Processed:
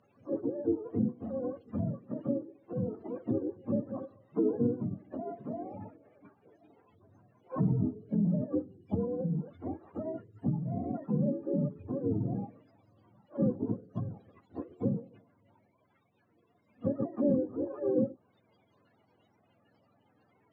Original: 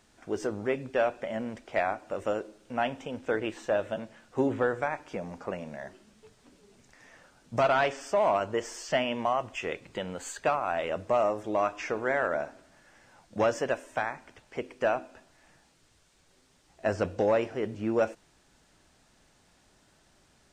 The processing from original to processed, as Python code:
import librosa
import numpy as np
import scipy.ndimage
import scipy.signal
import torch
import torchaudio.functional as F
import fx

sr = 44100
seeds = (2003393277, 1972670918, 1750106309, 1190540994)

y = fx.octave_mirror(x, sr, pivot_hz=420.0)
y = fx.weighting(y, sr, curve='A')
y = fx.env_lowpass_down(y, sr, base_hz=1100.0, full_db=-33.5)
y = fx.high_shelf(y, sr, hz=3400.0, db=-9.5)
y = fx.formant_shift(y, sr, semitones=-6)
y = y * librosa.db_to_amplitude(6.0)